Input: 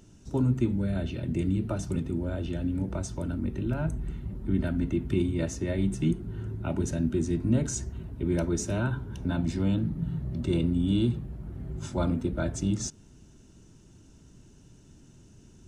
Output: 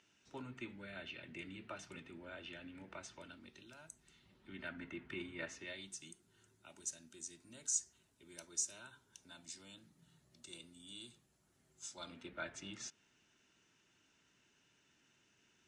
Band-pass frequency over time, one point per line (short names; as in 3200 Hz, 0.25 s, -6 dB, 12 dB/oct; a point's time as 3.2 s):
band-pass, Q 1.6
3.13 s 2300 Hz
3.9 s 7600 Hz
4.76 s 1900 Hz
5.49 s 1900 Hz
6.05 s 7300 Hz
11.85 s 7300 Hz
12.31 s 2200 Hz